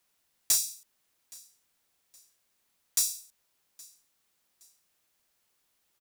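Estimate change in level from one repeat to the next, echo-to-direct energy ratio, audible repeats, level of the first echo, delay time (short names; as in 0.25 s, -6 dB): -9.0 dB, -23.5 dB, 2, -24.0 dB, 0.819 s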